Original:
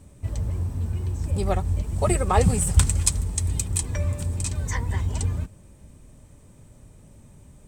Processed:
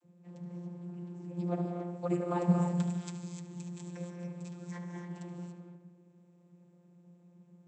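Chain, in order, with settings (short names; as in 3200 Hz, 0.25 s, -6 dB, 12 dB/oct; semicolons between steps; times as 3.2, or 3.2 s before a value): tape echo 73 ms, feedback 73%, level -9 dB, low-pass 3500 Hz; non-linear reverb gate 0.31 s rising, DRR 3 dB; vocoder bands 32, saw 175 Hz; gain -8 dB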